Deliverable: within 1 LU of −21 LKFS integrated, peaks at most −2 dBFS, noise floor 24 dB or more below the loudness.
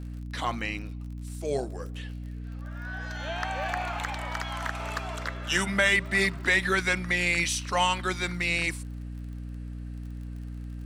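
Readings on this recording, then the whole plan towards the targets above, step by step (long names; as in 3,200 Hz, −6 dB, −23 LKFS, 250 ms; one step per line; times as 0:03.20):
crackle rate 42 per second; mains hum 60 Hz; hum harmonics up to 300 Hz; level of the hum −35 dBFS; integrated loudness −28.0 LKFS; sample peak −10.5 dBFS; target loudness −21.0 LKFS
→ click removal
hum removal 60 Hz, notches 5
level +7 dB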